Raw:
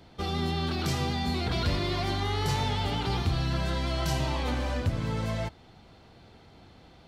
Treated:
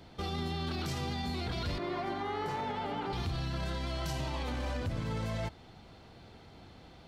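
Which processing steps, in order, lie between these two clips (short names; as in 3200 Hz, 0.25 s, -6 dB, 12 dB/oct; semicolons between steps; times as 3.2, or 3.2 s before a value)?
1.78–3.13 three-band isolator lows -20 dB, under 190 Hz, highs -15 dB, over 2100 Hz; limiter -27.5 dBFS, peak gain reduction 9 dB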